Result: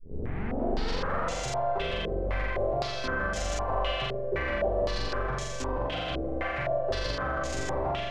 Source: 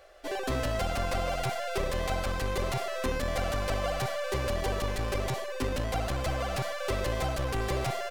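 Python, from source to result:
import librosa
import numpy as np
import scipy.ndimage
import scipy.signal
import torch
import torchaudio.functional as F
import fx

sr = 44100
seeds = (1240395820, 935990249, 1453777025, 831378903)

y = fx.tape_start_head(x, sr, length_s=1.32)
y = fx.room_flutter(y, sr, wall_m=7.4, rt60_s=1.4)
y = fx.filter_held_lowpass(y, sr, hz=3.9, low_hz=430.0, high_hz=6800.0)
y = y * librosa.db_to_amplitude(-6.0)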